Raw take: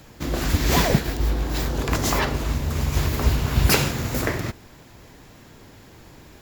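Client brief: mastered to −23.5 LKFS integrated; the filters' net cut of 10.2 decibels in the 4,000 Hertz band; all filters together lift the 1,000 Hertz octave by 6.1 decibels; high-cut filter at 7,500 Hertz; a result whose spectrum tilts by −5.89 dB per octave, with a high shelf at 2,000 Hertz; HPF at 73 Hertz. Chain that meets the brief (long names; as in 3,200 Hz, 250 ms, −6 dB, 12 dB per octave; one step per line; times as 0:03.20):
high-pass filter 73 Hz
low-pass filter 7,500 Hz
parametric band 1,000 Hz +9 dB
high-shelf EQ 2,000 Hz −5 dB
parametric band 4,000 Hz −8.5 dB
level +0.5 dB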